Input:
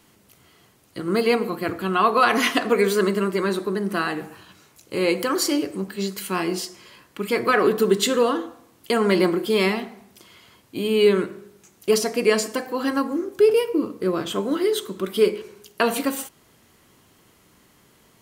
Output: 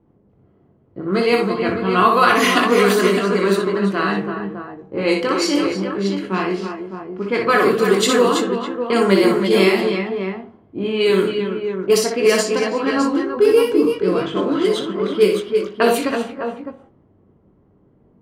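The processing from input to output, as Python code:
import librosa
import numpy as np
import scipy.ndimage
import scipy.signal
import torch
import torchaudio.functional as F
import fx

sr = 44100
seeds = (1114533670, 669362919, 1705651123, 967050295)

y = fx.chorus_voices(x, sr, voices=2, hz=0.8, base_ms=21, depth_ms=1.2, mix_pct=35)
y = fx.echo_multitap(y, sr, ms=(61, 302, 328, 337, 607), db=(-4.5, -18.0, -8.0, -12.5, -8.0))
y = fx.env_lowpass(y, sr, base_hz=480.0, full_db=-16.5)
y = F.gain(torch.from_numpy(y), 5.5).numpy()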